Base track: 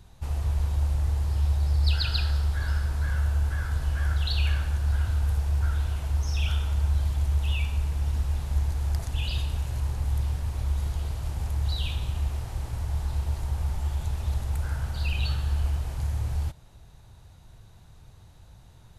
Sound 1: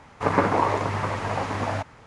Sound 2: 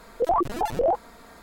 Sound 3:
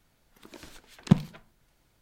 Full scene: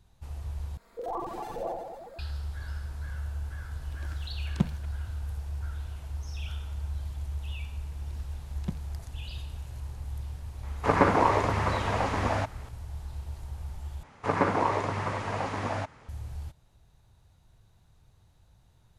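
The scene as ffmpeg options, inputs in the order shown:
-filter_complex "[3:a]asplit=2[s0][s1];[1:a]asplit=2[s2][s3];[0:a]volume=0.316[s4];[2:a]aecho=1:1:40|92|159.6|247.5|361.7|510.2:0.794|0.631|0.501|0.398|0.316|0.251[s5];[s4]asplit=3[s6][s7][s8];[s6]atrim=end=0.774[s9];[s5]atrim=end=1.42,asetpts=PTS-STARTPTS,volume=0.178[s10];[s7]atrim=start=2.186:end=14.034[s11];[s3]atrim=end=2.06,asetpts=PTS-STARTPTS,volume=0.596[s12];[s8]atrim=start=16.086[s13];[s0]atrim=end=2.01,asetpts=PTS-STARTPTS,volume=0.447,afade=t=in:d=0.004:c=hsin,afade=t=out:st=2.006:d=0.004:c=hsin,adelay=153909S[s14];[s1]atrim=end=2.01,asetpts=PTS-STARTPTS,volume=0.178,afade=t=in:d=0.004:c=hsin,afade=t=out:st=2.006:d=0.004:c=hsin,adelay=7570[s15];[s2]atrim=end=2.06,asetpts=PTS-STARTPTS,volume=0.891,afade=t=in:d=0.004:c=hsin,afade=t=out:st=2.056:d=0.004:c=hsin,adelay=10630[s16];[s9][s10]acrossfade=d=0.004:c1=hsin:c2=hsin[s17];[s17][s11]acrossfade=d=0.004:c1=hsin:c2=hsin[s18];[s18][s12]acrossfade=d=0.004:c1=hsin:c2=hsin[s19];[s19][s13]acrossfade=d=0.004:c1=hsin:c2=hsin[s20];[s20][s14][s15][s16]amix=inputs=4:normalize=0"

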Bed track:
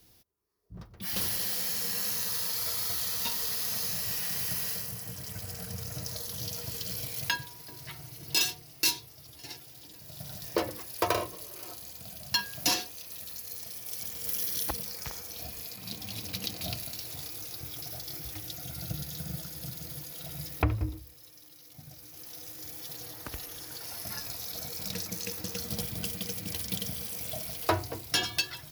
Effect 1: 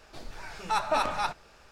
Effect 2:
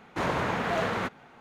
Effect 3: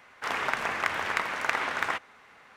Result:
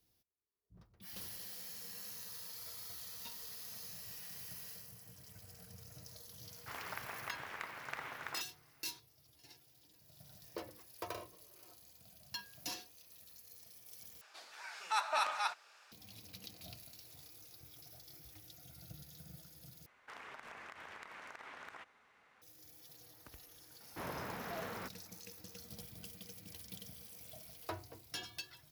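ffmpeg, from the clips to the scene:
-filter_complex "[3:a]asplit=2[s0][s1];[0:a]volume=0.15[s2];[1:a]highpass=1000[s3];[s1]acompressor=threshold=0.02:ratio=6:attack=3.2:release=140:knee=1:detection=peak[s4];[s2]asplit=3[s5][s6][s7];[s5]atrim=end=14.214[s8];[s3]atrim=end=1.71,asetpts=PTS-STARTPTS,volume=0.668[s9];[s6]atrim=start=15.916:end=19.864[s10];[s4]atrim=end=2.56,asetpts=PTS-STARTPTS,volume=0.211[s11];[s7]atrim=start=22.416[s12];[s0]atrim=end=2.56,asetpts=PTS-STARTPTS,volume=0.15,afade=t=in:d=0.004:c=hsin,afade=t=out:st=2.556:d=0.004:c=hsin,adelay=6440[s13];[2:a]atrim=end=1.4,asetpts=PTS-STARTPTS,volume=0.168,afade=t=in:d=0.004:c=hsin,afade=t=out:st=1.396:d=0.004:c=hsin,adelay=23800[s14];[s8][s9]acrossfade=d=0.004:c1=hsin:c2=hsin[s15];[s15][s10]acrossfade=d=0.004:c1=hsin:c2=hsin[s16];[s16][s11]acrossfade=d=0.004:c1=hsin:c2=hsin[s17];[s17][s12]acrossfade=d=0.004:c1=hsin:c2=hsin[s18];[s18][s13][s14]amix=inputs=3:normalize=0"

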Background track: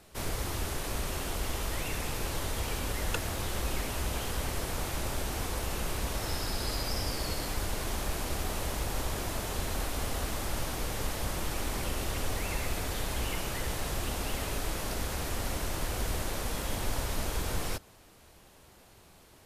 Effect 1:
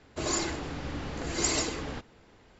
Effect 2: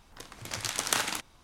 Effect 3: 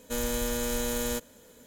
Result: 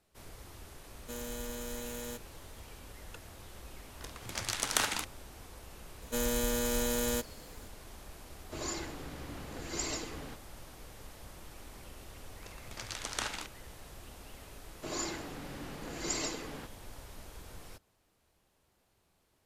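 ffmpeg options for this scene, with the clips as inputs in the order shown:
-filter_complex "[3:a]asplit=2[s0][s1];[2:a]asplit=2[s2][s3];[1:a]asplit=2[s4][s5];[0:a]volume=0.15[s6];[s3]lowpass=8000[s7];[s5]highpass=f=120:w=0.5412,highpass=f=120:w=1.3066[s8];[s0]atrim=end=1.66,asetpts=PTS-STARTPTS,volume=0.282,afade=t=in:d=0.004:c=hsin,afade=t=out:st=1.656:d=0.004:c=hsin,adelay=980[s9];[s2]atrim=end=1.43,asetpts=PTS-STARTPTS,volume=0.794,afade=t=in:d=0.004:c=hsin,afade=t=out:st=1.426:d=0.004:c=hsin,adelay=3840[s10];[s1]atrim=end=1.66,asetpts=PTS-STARTPTS,volume=0.841,afade=t=in:d=0.004:c=hsin,afade=t=out:st=1.656:d=0.004:c=hsin,adelay=6020[s11];[s4]atrim=end=2.59,asetpts=PTS-STARTPTS,volume=0.376,afade=t=in:d=0.004:c=hsin,afade=t=out:st=2.586:d=0.004:c=hsin,adelay=8350[s12];[s7]atrim=end=1.43,asetpts=PTS-STARTPTS,volume=0.422,afade=t=in:d=0.004:c=hsin,afade=t=out:st=1.426:d=0.004:c=hsin,adelay=12260[s13];[s8]atrim=end=2.59,asetpts=PTS-STARTPTS,volume=0.447,afade=t=in:d=0.004:c=hsin,afade=t=out:st=2.586:d=0.004:c=hsin,adelay=14660[s14];[s6][s9][s10][s11][s12][s13][s14]amix=inputs=7:normalize=0"

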